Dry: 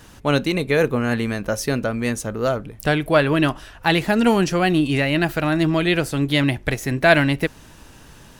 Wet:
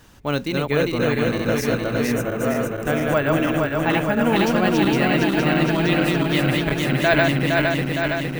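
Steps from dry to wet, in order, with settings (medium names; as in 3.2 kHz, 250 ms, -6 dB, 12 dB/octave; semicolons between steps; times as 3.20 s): backward echo that repeats 231 ms, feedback 83%, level -2 dB; 2.12–4.36 s: peaking EQ 4.3 kHz -13 dB 0.54 oct; careless resampling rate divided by 2×, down filtered, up hold; trim -4.5 dB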